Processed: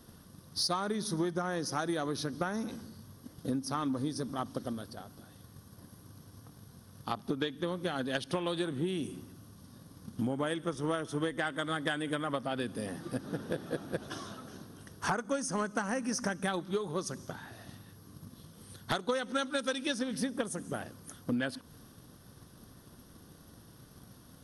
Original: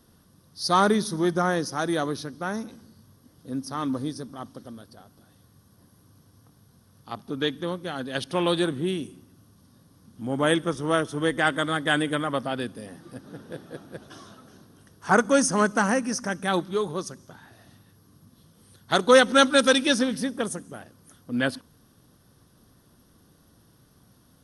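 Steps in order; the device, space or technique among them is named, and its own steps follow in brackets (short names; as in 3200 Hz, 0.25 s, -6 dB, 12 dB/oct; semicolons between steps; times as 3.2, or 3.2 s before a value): drum-bus smash (transient shaper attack +7 dB, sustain +2 dB; compressor 12:1, threshold -31 dBFS, peak gain reduction 24 dB; soft clip -20.5 dBFS, distortion -24 dB); gain +2.5 dB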